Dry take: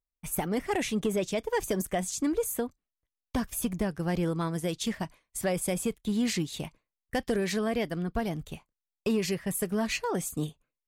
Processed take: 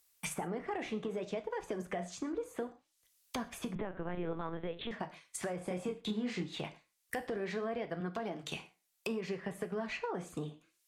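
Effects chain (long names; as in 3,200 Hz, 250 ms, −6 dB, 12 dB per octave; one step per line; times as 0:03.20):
0:08.00–0:08.52: high-pass filter 180 Hz 12 dB per octave
treble cut that deepens with the level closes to 1,100 Hz, closed at −28.5 dBFS
spectral tilt +4 dB per octave
brickwall limiter −27.5 dBFS, peak gain reduction 8 dB
downward compressor, threshold −38 dBFS, peak gain reduction 7.5 dB
flanger 0.62 Hz, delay 6.3 ms, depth 9.3 ms, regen −74%
0:05.58–0:06.43: double-tracking delay 28 ms −4 dB
reverb whose tail is shaped and stops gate 150 ms falling, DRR 10.5 dB
0:03.75–0:04.91: linear-prediction vocoder at 8 kHz pitch kept
multiband upward and downward compressor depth 40%
level +7.5 dB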